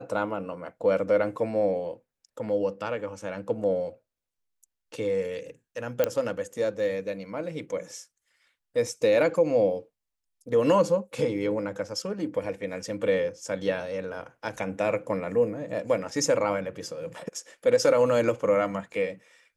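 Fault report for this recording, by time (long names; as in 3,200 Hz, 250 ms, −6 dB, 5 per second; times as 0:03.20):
0:06.04: click −10 dBFS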